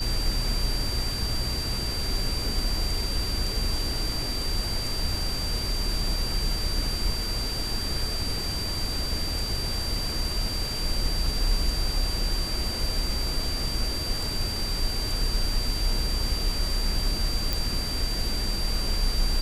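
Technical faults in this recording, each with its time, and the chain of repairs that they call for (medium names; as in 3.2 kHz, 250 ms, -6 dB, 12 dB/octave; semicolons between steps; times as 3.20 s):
whine 4.7 kHz -31 dBFS
17.53 s: pop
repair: de-click; band-stop 4.7 kHz, Q 30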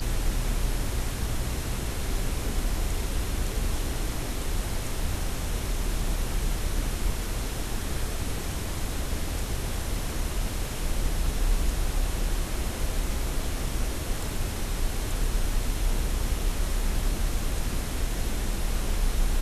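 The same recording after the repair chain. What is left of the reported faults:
nothing left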